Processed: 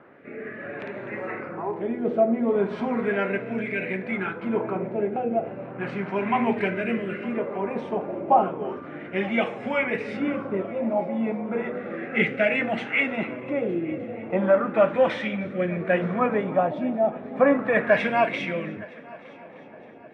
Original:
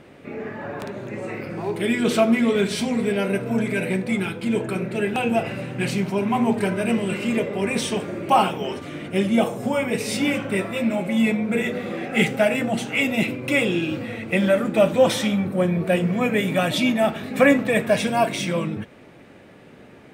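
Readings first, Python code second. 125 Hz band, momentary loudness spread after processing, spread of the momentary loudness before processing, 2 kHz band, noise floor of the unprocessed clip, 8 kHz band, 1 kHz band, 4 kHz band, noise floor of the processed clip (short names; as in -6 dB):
-7.5 dB, 13 LU, 11 LU, -2.5 dB, -47 dBFS, under -25 dB, -1.0 dB, -12.0 dB, -44 dBFS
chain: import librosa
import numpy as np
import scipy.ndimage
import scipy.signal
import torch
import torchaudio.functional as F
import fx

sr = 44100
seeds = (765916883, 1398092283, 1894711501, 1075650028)

p1 = fx.filter_lfo_lowpass(x, sr, shape='sine', hz=0.34, low_hz=810.0, high_hz=2200.0, q=2.2)
p2 = fx.highpass(p1, sr, hz=320.0, slope=6)
p3 = fx.rotary(p2, sr, hz=0.6)
y = p3 + fx.echo_heads(p3, sr, ms=305, heads='first and third', feedback_pct=57, wet_db=-23.5, dry=0)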